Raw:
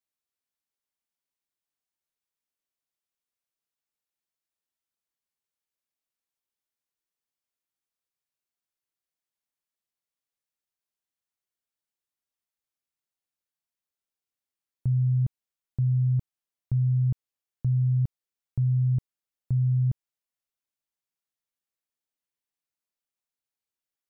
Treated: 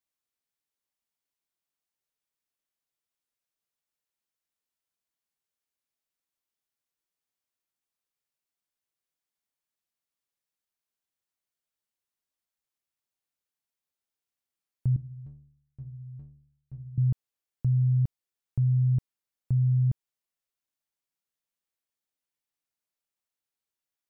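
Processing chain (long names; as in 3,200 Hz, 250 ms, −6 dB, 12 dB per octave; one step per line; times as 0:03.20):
0:14.96–0:16.98: stiff-string resonator 67 Hz, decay 0.82 s, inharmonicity 0.03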